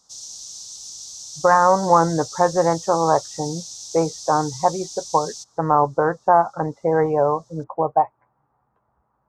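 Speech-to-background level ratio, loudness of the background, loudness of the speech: 14.0 dB, -34.0 LUFS, -20.0 LUFS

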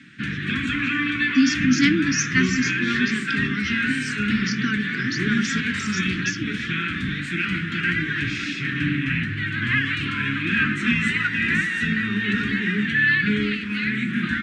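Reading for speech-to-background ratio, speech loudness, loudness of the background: -2.0 dB, -25.0 LUFS, -23.0 LUFS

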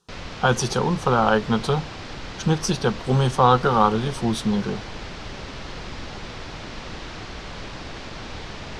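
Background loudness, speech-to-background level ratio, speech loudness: -35.5 LUFS, 14.0 dB, -21.5 LUFS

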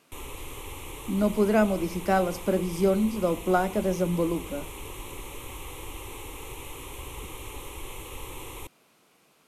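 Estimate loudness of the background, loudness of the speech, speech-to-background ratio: -40.0 LUFS, -26.0 LUFS, 14.0 dB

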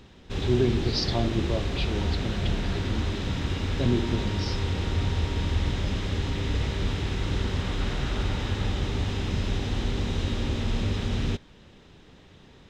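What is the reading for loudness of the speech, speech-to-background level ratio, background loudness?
-30.5 LUFS, -1.5 dB, -29.0 LUFS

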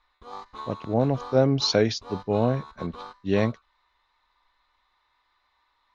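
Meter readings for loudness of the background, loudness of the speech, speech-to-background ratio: -42.0 LUFS, -24.5 LUFS, 17.5 dB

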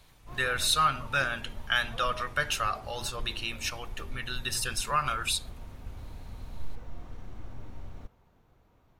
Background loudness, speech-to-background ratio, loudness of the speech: -47.5 LUFS, 17.5 dB, -30.0 LUFS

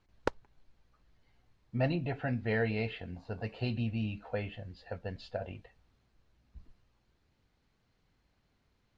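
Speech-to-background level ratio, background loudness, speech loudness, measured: 3.0 dB, -39.0 LUFS, -36.0 LUFS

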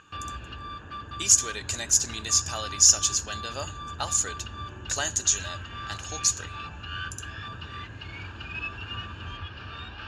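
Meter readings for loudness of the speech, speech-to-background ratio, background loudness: -23.0 LUFS, 15.0 dB, -38.0 LUFS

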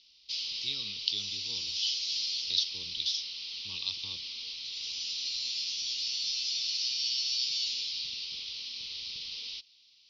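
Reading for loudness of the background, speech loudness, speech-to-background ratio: -32.5 LUFS, -34.5 LUFS, -2.0 dB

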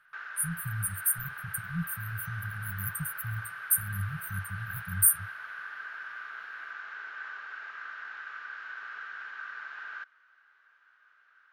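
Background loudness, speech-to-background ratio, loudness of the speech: -40.5 LUFS, 10.0 dB, -30.5 LUFS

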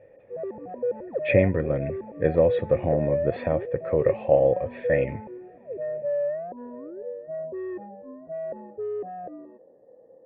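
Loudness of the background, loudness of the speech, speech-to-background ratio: -32.5 LUFS, -24.5 LUFS, 8.0 dB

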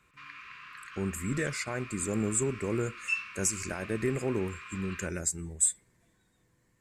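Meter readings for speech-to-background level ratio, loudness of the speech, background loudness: 9.5 dB, -31.5 LUFS, -41.0 LUFS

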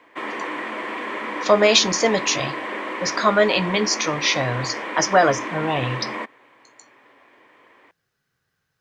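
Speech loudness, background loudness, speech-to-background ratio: -20.0 LUFS, -29.0 LUFS, 9.0 dB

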